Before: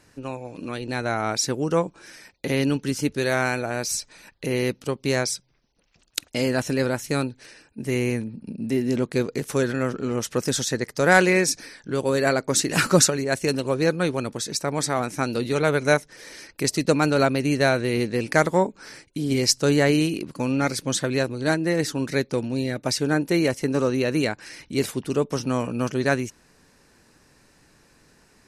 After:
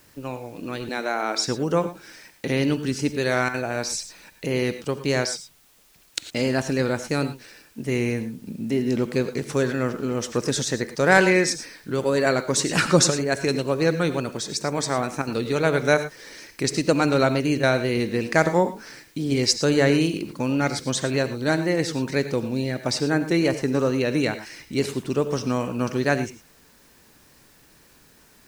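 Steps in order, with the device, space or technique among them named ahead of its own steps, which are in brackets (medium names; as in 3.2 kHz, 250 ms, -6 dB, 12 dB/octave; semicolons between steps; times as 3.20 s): 0.89–1.48 s: high-pass 250 Hz 24 dB/octave; worn cassette (low-pass 8.2 kHz 12 dB/octave; wow and flutter; level dips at 3.49/15.22/17.58 s, 51 ms -9 dB; white noise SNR 34 dB); gated-style reverb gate 130 ms rising, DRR 11 dB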